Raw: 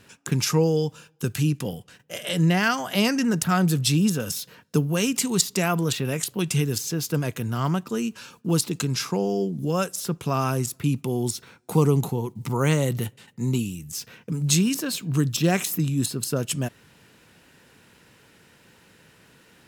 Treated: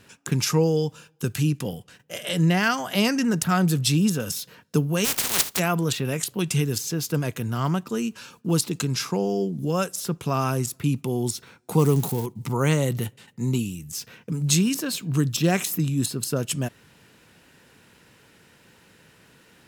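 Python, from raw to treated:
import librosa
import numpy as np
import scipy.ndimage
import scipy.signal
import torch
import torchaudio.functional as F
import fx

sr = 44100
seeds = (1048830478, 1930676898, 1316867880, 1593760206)

y = fx.spec_flatten(x, sr, power=0.14, at=(5.04, 5.58), fade=0.02)
y = fx.crossing_spikes(y, sr, level_db=-25.0, at=(11.79, 12.26))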